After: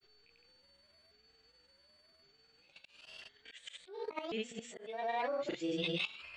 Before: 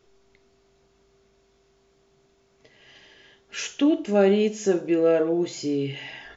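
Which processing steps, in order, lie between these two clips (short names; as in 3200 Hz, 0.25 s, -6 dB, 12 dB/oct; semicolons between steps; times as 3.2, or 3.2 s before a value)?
repeated pitch sweeps +9 st, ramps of 1.089 s; band shelf 2200 Hz +10 dB; whine 4500 Hz -55 dBFS; level quantiser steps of 16 dB; grains, pitch spread up and down by 0 st; auto swell 0.323 s; gain -2 dB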